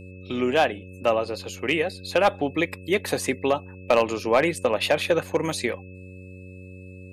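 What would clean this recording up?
clip repair -11 dBFS; de-hum 92.8 Hz, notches 6; notch 2600 Hz, Q 30

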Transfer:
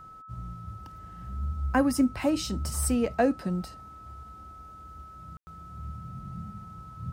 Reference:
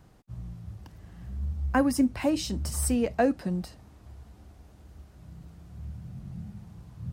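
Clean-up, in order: notch 1300 Hz, Q 30; room tone fill 5.37–5.47

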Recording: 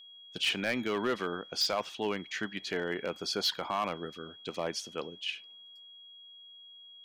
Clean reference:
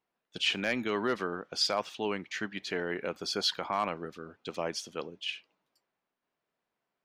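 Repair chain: clip repair -23 dBFS; notch 3300 Hz, Q 30

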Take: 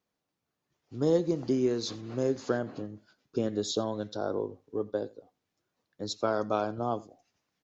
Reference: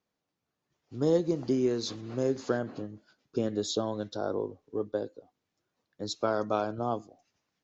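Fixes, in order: inverse comb 86 ms -22.5 dB

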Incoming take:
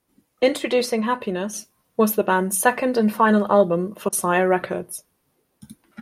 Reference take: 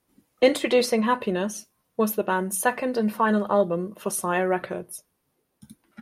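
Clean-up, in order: interpolate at 4.09, 34 ms; gain correction -5 dB, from 1.53

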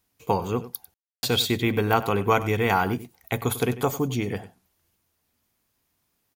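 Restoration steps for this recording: room tone fill 0.94–1.23; inverse comb 97 ms -15.5 dB

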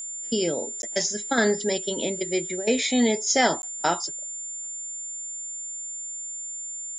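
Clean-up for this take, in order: notch 7200 Hz, Q 30; interpolate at 0.82/3.62, 11 ms

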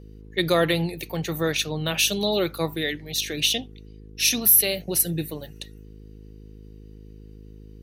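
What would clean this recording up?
de-hum 52.5 Hz, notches 9

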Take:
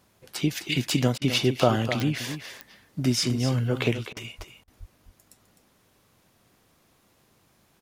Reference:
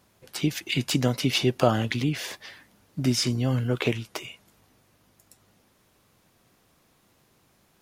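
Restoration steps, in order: de-click; de-plosive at 4.37/4.79; interpolate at 1.18/4.13/4.64, 35 ms; inverse comb 0.256 s -10 dB

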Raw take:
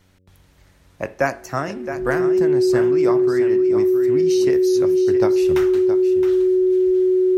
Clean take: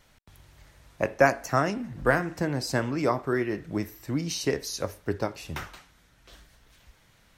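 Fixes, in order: de-hum 92.6 Hz, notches 6; notch 370 Hz, Q 30; inverse comb 0.668 s -10 dB; gain 0 dB, from 5.21 s -5.5 dB

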